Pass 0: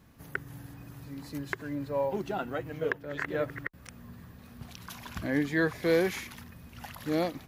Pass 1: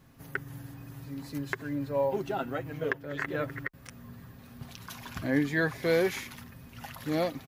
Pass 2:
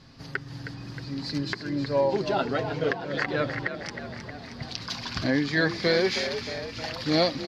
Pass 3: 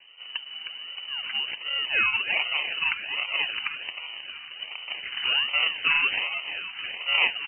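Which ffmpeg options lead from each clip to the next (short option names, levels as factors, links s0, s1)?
-af "aecho=1:1:7.5:0.39"
-filter_complex "[0:a]alimiter=limit=0.112:level=0:latency=1:release=374,lowpass=f=4700:t=q:w=5.6,asplit=2[s0][s1];[s1]asplit=8[s2][s3][s4][s5][s6][s7][s8][s9];[s2]adelay=314,afreqshift=45,volume=0.316[s10];[s3]adelay=628,afreqshift=90,volume=0.202[s11];[s4]adelay=942,afreqshift=135,volume=0.129[s12];[s5]adelay=1256,afreqshift=180,volume=0.0832[s13];[s6]adelay=1570,afreqshift=225,volume=0.0531[s14];[s7]adelay=1884,afreqshift=270,volume=0.0339[s15];[s8]adelay=2198,afreqshift=315,volume=0.0216[s16];[s9]adelay=2512,afreqshift=360,volume=0.014[s17];[s10][s11][s12][s13][s14][s15][s16][s17]amix=inputs=8:normalize=0[s18];[s0][s18]amix=inputs=2:normalize=0,volume=1.88"
-filter_complex "[0:a]acrossover=split=120[s0][s1];[s1]acrusher=samples=24:mix=1:aa=0.000001:lfo=1:lforange=14.4:lforate=1.3[s2];[s0][s2]amix=inputs=2:normalize=0,lowpass=f=2600:t=q:w=0.5098,lowpass=f=2600:t=q:w=0.6013,lowpass=f=2600:t=q:w=0.9,lowpass=f=2600:t=q:w=2.563,afreqshift=-3100"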